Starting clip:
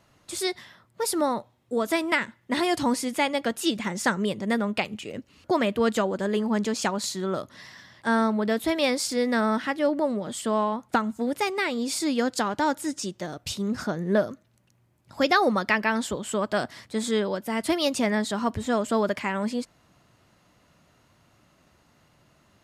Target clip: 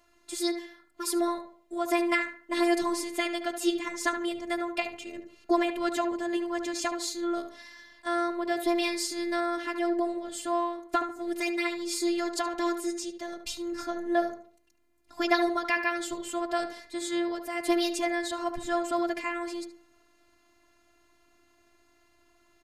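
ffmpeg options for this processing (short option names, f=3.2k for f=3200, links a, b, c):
-filter_complex "[0:a]afftfilt=real='hypot(re,im)*cos(PI*b)':imag='0':win_size=512:overlap=0.75,asplit=2[a][b];[b]adelay=73,lowpass=f=1.8k:p=1,volume=-7dB,asplit=2[c][d];[d]adelay=73,lowpass=f=1.8k:p=1,volume=0.39,asplit=2[e][f];[f]adelay=73,lowpass=f=1.8k:p=1,volume=0.39,asplit=2[g][h];[h]adelay=73,lowpass=f=1.8k:p=1,volume=0.39,asplit=2[i][j];[j]adelay=73,lowpass=f=1.8k:p=1,volume=0.39[k];[c][e][g][i][k]amix=inputs=5:normalize=0[l];[a][l]amix=inputs=2:normalize=0"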